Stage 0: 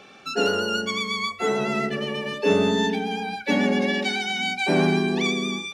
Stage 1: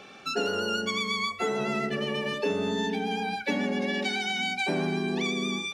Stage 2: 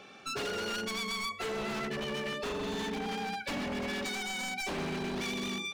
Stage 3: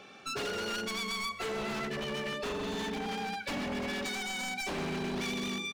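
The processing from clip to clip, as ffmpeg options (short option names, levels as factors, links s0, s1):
-af "acompressor=threshold=0.0562:ratio=6"
-af "aeval=exprs='0.0501*(abs(mod(val(0)/0.0501+3,4)-2)-1)':c=same,volume=0.631"
-af "aecho=1:1:158|316|474|632|790:0.112|0.0628|0.0352|0.0197|0.011"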